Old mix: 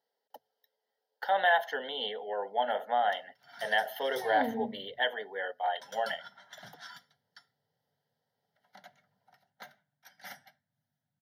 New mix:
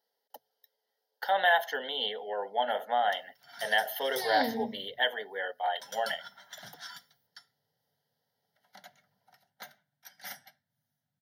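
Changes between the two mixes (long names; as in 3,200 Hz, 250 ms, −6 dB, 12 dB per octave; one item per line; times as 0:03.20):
second sound: remove high-frequency loss of the air 440 metres
master: add high-shelf EQ 4,200 Hz +10 dB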